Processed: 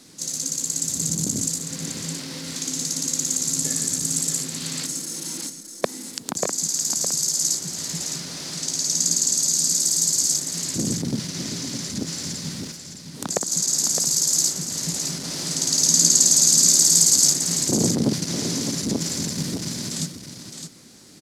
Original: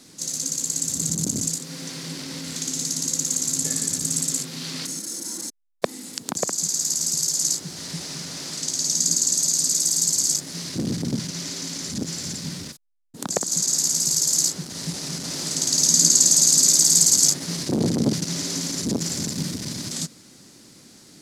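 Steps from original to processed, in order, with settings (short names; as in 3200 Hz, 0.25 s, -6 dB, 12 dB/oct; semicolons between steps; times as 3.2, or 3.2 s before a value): echo 0.612 s -8 dB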